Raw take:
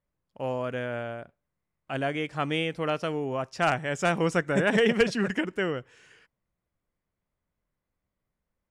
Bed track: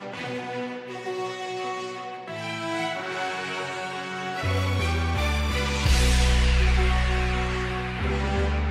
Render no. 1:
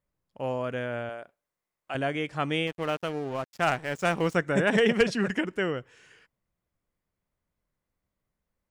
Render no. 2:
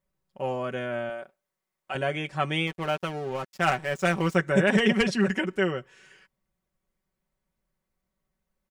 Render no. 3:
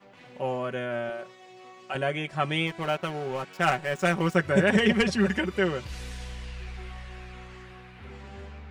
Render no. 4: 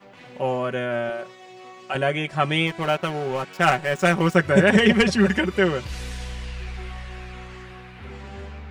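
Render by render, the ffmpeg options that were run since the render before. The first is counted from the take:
ffmpeg -i in.wav -filter_complex "[0:a]asettb=1/sr,asplit=3[link_01][link_02][link_03];[link_01]atrim=end=1.094[link_04];[link_02]atrim=start=1.09:end=1.95,asetpts=PTS-STARTPTS,afade=type=in:duration=0.004:curve=qsin,afade=type=out:start_time=0.856:duration=0.004:curve=qsin,bass=frequency=250:gain=-15,treble=frequency=4000:gain=3[link_05];[link_03]atrim=start=1.946[link_06];[link_04][link_05]acrossfade=duration=0.004:curve1=hsin:curve2=qsin[link_07];[link_07][link_06]acrossfade=duration=0.004:curve1=qsin:curve2=hsin,asettb=1/sr,asplit=3[link_08][link_09][link_10];[link_08]atrim=end=2.674[link_11];[link_09]atrim=start=2.67:end=4.35,asetpts=PTS-STARTPTS,afade=type=in:duration=0.004:curve=qsin,afade=type=out:start_time=1.676:duration=0.004:curve=qsin,aeval=exprs='sgn(val(0))*max(abs(val(0))-0.00944,0)':channel_layout=same[link_12];[link_10]atrim=start=4.346[link_13];[link_11][link_12]acrossfade=duration=0.004:curve1=hsin:curve2=qsin[link_14];[link_14][link_13]acrossfade=duration=0.004:curve1=qsin:curve2=hsin" out.wav
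ffmpeg -i in.wav -af "aecho=1:1:5.3:0.7" out.wav
ffmpeg -i in.wav -i bed.wav -filter_complex "[1:a]volume=-18dB[link_01];[0:a][link_01]amix=inputs=2:normalize=0" out.wav
ffmpeg -i in.wav -af "volume=5.5dB" out.wav

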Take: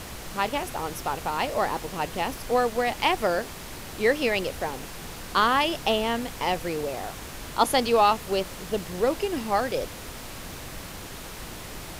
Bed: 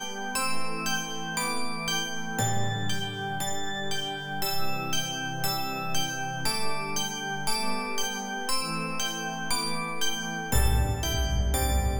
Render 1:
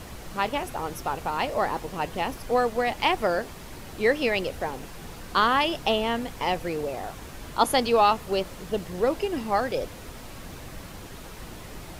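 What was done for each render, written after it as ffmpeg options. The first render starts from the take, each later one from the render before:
ffmpeg -i in.wav -af "afftdn=noise_reduction=6:noise_floor=-40" out.wav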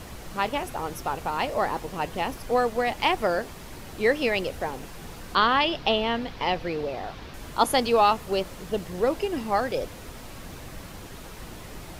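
ffmpeg -i in.wav -filter_complex "[0:a]asettb=1/sr,asplit=3[link_01][link_02][link_03];[link_01]atrim=end=5.354[link_04];[link_02]atrim=start=5.35:end=7.34,asetpts=PTS-STARTPTS,afade=type=in:duration=0.004:curve=qsin,afade=type=out:start_time=1.986:duration=0.004:curve=qsin,highshelf=frequency=6000:width_type=q:width=1.5:gain=-11[link_05];[link_03]atrim=start=7.336[link_06];[link_04][link_05]acrossfade=duration=0.004:curve1=hsin:curve2=qsin[link_07];[link_07][link_06]acrossfade=duration=0.004:curve1=qsin:curve2=hsin" out.wav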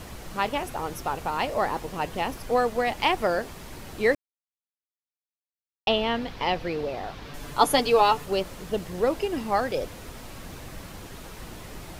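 ffmpeg -i in.wav -filter_complex "[0:a]asettb=1/sr,asplit=3[link_01][link_02][link_03];[link_01]atrim=end=7.254[link_04];[link_02]atrim=start=7.25:end=8.26,asetpts=PTS-STARTPTS,afade=type=in:duration=0.004:curve=qsin,afade=type=out:start_time=1.006:duration=0.004:curve=qsin,aecho=1:1:6.9:0.65,atrim=end_sample=44541[link_05];[link_03]atrim=start=8.256[link_06];[link_04][link_05]acrossfade=duration=0.004:curve1=hsin:curve2=qsin[link_07];[link_07][link_06]acrossfade=duration=0.004:curve1=qsin:curve2=hsin,asplit=3[link_08][link_09][link_10];[link_08]atrim=end=4.15,asetpts=PTS-STARTPTS,afade=type=out:start_time=4.146:duration=0.004:curve=hsin[link_11];[link_09]atrim=start=4.15:end=5.87,asetpts=PTS-STARTPTS,volume=0[link_12];[link_10]atrim=start=5.87,asetpts=PTS-STARTPTS,afade=type=in:duration=0.004:curve=hsin[link_13];[link_11][link_12][link_13]concat=n=3:v=0:a=1" out.wav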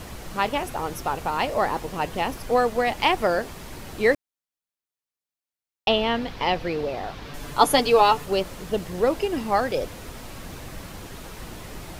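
ffmpeg -i in.wav -af "volume=2.5dB" out.wav

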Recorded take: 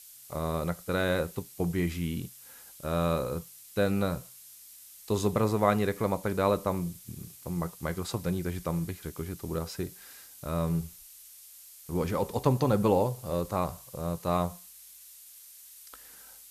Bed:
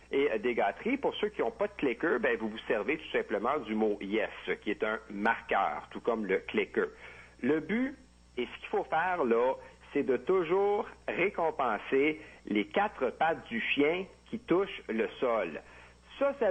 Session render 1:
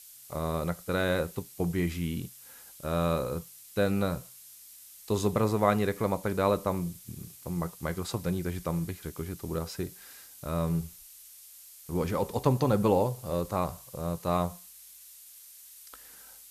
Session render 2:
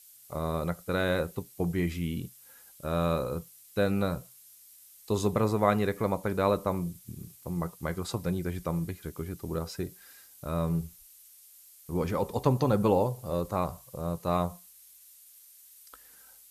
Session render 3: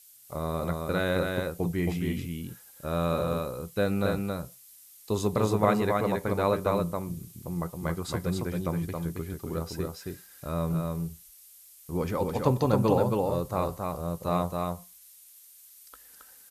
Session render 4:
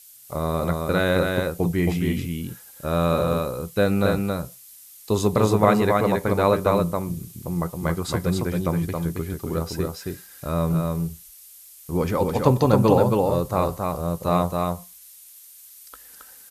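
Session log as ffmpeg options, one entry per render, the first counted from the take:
ffmpeg -i in.wav -af anull out.wav
ffmpeg -i in.wav -af "afftdn=noise_reduction=6:noise_floor=-51" out.wav
ffmpeg -i in.wav -af "aecho=1:1:272:0.668" out.wav
ffmpeg -i in.wav -af "volume=6.5dB,alimiter=limit=-3dB:level=0:latency=1" out.wav

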